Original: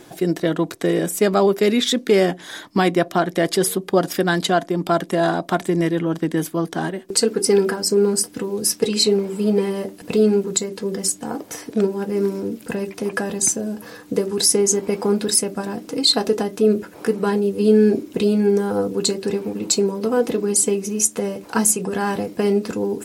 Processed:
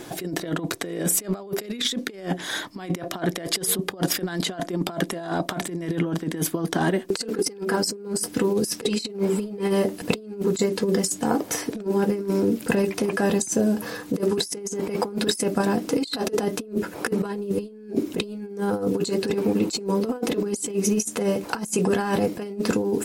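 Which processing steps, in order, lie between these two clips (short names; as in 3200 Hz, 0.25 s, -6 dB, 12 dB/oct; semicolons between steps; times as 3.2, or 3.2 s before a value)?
negative-ratio compressor -24 dBFS, ratio -0.5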